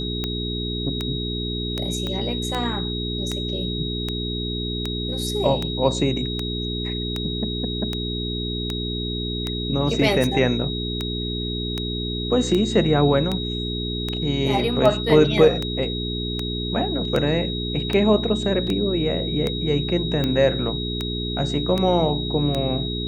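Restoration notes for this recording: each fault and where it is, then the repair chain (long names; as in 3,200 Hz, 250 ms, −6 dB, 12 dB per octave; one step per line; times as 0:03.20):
mains hum 60 Hz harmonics 7 −28 dBFS
scratch tick 78 rpm −11 dBFS
whistle 3,800 Hz −29 dBFS
0:02.07: click −15 dBFS
0:18.67: drop-out 2.9 ms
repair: click removal
notch filter 3,800 Hz, Q 30
hum removal 60 Hz, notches 7
repair the gap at 0:18.67, 2.9 ms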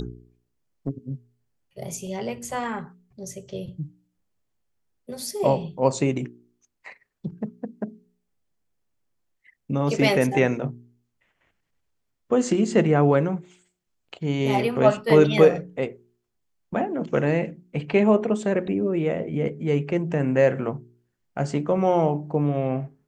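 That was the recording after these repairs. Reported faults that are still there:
0:02.07: click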